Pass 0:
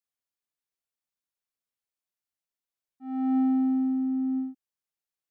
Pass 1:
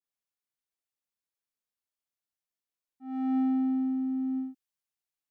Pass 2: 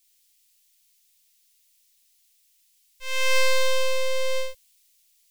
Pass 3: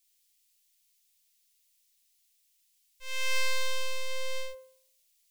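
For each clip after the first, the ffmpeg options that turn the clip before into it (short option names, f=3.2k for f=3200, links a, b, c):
-af "adynamicequalizer=threshold=0.00398:dfrequency=1800:dqfactor=0.7:tfrequency=1800:tqfactor=0.7:attack=5:release=100:ratio=0.375:range=3:mode=boostabove:tftype=highshelf,volume=-3dB"
-af "aeval=exprs='abs(val(0))':c=same,aexciter=amount=8.8:drive=5.7:freq=2k,volume=8.5dB"
-af "bandreject=f=174:t=h:w=4,bandreject=f=348:t=h:w=4,bandreject=f=522:t=h:w=4,bandreject=f=696:t=h:w=4,bandreject=f=870:t=h:w=4,bandreject=f=1.044k:t=h:w=4,bandreject=f=1.218k:t=h:w=4,bandreject=f=1.392k:t=h:w=4,bandreject=f=1.566k:t=h:w=4,bandreject=f=1.74k:t=h:w=4,bandreject=f=1.914k:t=h:w=4,bandreject=f=2.088k:t=h:w=4,bandreject=f=2.262k:t=h:w=4,bandreject=f=2.436k:t=h:w=4,bandreject=f=2.61k:t=h:w=4,bandreject=f=2.784k:t=h:w=4,bandreject=f=2.958k:t=h:w=4,bandreject=f=3.132k:t=h:w=4,bandreject=f=3.306k:t=h:w=4,bandreject=f=3.48k:t=h:w=4,bandreject=f=3.654k:t=h:w=4,bandreject=f=3.828k:t=h:w=4,bandreject=f=4.002k:t=h:w=4,bandreject=f=4.176k:t=h:w=4,bandreject=f=4.35k:t=h:w=4,bandreject=f=4.524k:t=h:w=4,bandreject=f=4.698k:t=h:w=4,bandreject=f=4.872k:t=h:w=4,bandreject=f=5.046k:t=h:w=4,bandreject=f=5.22k:t=h:w=4,bandreject=f=5.394k:t=h:w=4,bandreject=f=5.568k:t=h:w=4,bandreject=f=5.742k:t=h:w=4,bandreject=f=5.916k:t=h:w=4,volume=-6.5dB"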